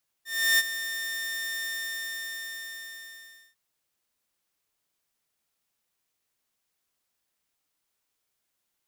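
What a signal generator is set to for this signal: ADSR saw 1810 Hz, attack 0.336 s, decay 35 ms, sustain -12.5 dB, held 1.39 s, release 1.91 s -15.5 dBFS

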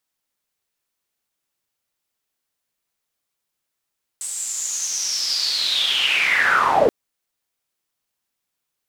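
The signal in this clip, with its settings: swept filtered noise pink, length 2.68 s bandpass, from 8200 Hz, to 410 Hz, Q 9, linear, gain ramp +12.5 dB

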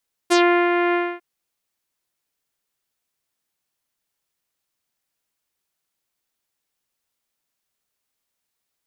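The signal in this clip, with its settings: synth note saw F4 24 dB/oct, low-pass 2300 Hz, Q 1.6, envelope 2.5 oct, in 0.13 s, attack 21 ms, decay 0.37 s, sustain -5 dB, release 0.26 s, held 0.64 s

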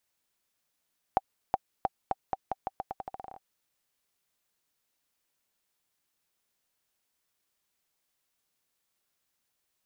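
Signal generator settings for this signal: bouncing ball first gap 0.37 s, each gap 0.84, 773 Hz, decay 33 ms -11 dBFS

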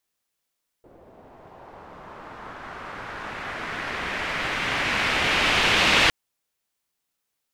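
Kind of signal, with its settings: swept filtered noise white, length 5.26 s lowpass, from 490 Hz, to 2900 Hz, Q 1.5, linear, gain ramp +27 dB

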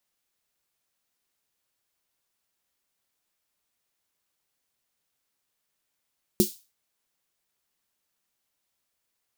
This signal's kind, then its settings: snare drum length 0.32 s, tones 210 Hz, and 360 Hz, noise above 3700 Hz, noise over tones -8.5 dB, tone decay 0.12 s, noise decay 0.33 s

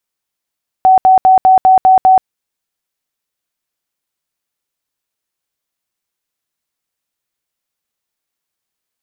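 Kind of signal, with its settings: tone bursts 754 Hz, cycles 97, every 0.20 s, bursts 7, -3.5 dBFS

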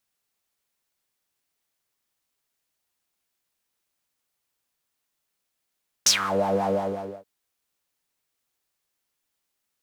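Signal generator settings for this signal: synth patch with filter wobble G3, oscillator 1 triangle, oscillator 2 saw, sub -6 dB, noise -6 dB, filter bandpass, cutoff 500 Hz, Q 7.4, filter envelope 3.5 oct, filter decay 0.25 s, filter sustain 10%, attack 5.2 ms, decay 0.11 s, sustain -11 dB, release 0.57 s, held 0.61 s, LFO 5.6 Hz, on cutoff 0.4 oct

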